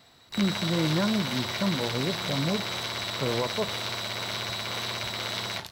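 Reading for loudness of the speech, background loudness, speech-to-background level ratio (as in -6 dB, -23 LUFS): -30.0 LUFS, -30.5 LUFS, 0.5 dB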